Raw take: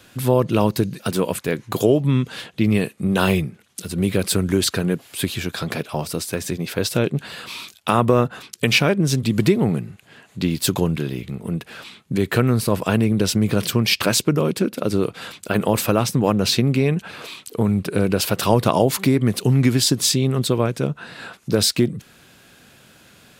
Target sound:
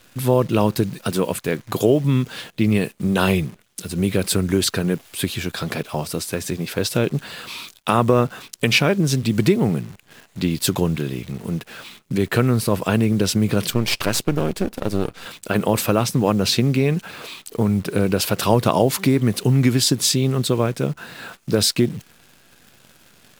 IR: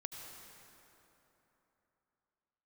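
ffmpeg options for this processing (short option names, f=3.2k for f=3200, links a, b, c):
-filter_complex "[0:a]asettb=1/sr,asplit=3[a][b][c];[a]atrim=end=13.704[d];[b]atrim=start=13.7:end=15.26,asetpts=PTS-STARTPTS,afade=t=in:d=0.004:c=qsin,afade=t=out:st=1.556:d=0.004:c=qsin,aeval=exprs='if(lt(val(0),0),0.251*val(0),val(0))':c=same[e];[c]atrim=start=15.256[f];[d][e]acrossfade=d=0.004:c1=hsin:c2=qsin[g];[g][f]acrossfade=d=0.004:c1=qsin:c2=hsin,acrusher=bits=8:dc=4:mix=0:aa=0.000001"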